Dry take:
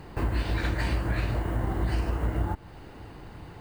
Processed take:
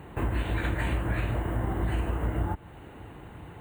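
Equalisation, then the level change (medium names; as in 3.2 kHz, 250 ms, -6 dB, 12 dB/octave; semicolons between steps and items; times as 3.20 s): high-pass 47 Hz; Butterworth band-stop 5.1 kHz, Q 1.4; 0.0 dB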